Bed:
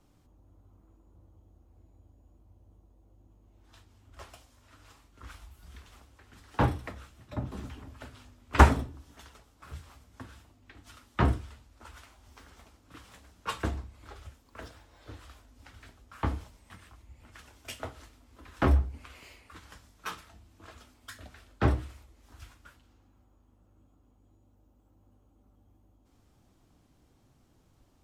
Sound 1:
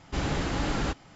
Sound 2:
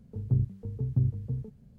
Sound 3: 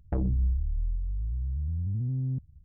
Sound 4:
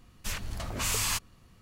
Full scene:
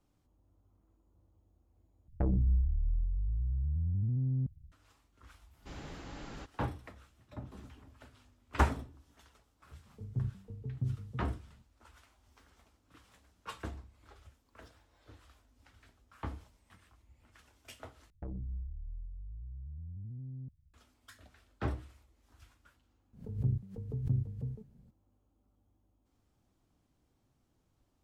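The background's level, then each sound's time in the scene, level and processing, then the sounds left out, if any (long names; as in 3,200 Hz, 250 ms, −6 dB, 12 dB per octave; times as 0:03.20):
bed −10 dB
0:02.08: overwrite with 3 −2 dB
0:05.53: mix in 1 −17.5 dB
0:09.85: mix in 2 −9 dB
0:18.10: overwrite with 3 −14 dB
0:23.13: mix in 2 −6 dB + background raised ahead of every attack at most 130 dB per second
not used: 4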